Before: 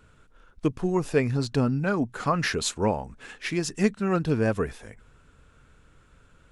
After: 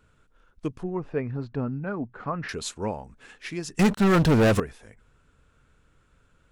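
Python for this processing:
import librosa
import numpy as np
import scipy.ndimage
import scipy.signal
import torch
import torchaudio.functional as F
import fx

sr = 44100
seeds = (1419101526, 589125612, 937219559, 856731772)

y = fx.lowpass(x, sr, hz=1800.0, slope=12, at=(0.83, 2.49))
y = fx.leveller(y, sr, passes=5, at=(3.79, 4.6))
y = F.gain(torch.from_numpy(y), -5.5).numpy()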